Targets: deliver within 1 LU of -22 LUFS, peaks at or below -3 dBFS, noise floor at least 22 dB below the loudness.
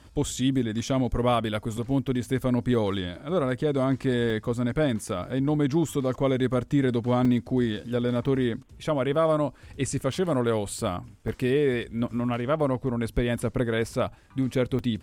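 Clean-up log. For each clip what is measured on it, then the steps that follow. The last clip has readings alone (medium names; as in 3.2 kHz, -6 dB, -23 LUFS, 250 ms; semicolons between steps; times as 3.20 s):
dropouts 6; longest dropout 3.6 ms; loudness -26.5 LUFS; peak level -12.5 dBFS; loudness target -22.0 LUFS
-> interpolate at 4.30/7.25/8.26/10.12/11.28/14.79 s, 3.6 ms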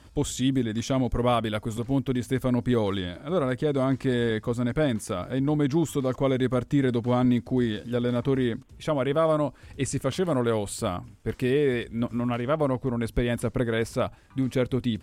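dropouts 0; loudness -26.5 LUFS; peak level -12.5 dBFS; loudness target -22.0 LUFS
-> trim +4.5 dB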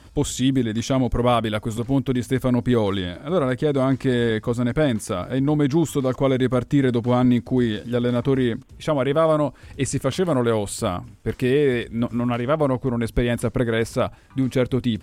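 loudness -22.0 LUFS; peak level -8.0 dBFS; noise floor -47 dBFS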